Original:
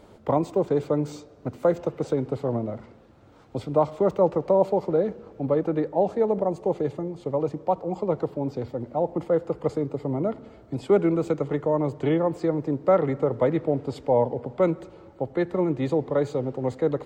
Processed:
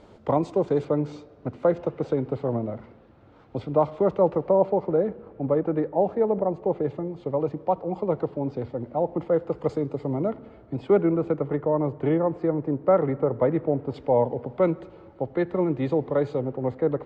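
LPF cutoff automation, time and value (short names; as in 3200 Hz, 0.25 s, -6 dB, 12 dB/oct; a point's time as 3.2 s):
6400 Hz
from 0.85 s 3400 Hz
from 4.48 s 2200 Hz
from 6.88 s 3300 Hz
from 9.5 s 5900 Hz
from 10.3 s 2800 Hz
from 11.01 s 1900 Hz
from 13.94 s 3500 Hz
from 16.41 s 2100 Hz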